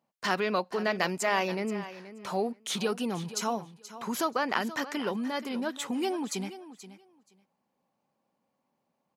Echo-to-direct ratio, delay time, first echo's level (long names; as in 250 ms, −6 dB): −14.5 dB, 478 ms, −14.5 dB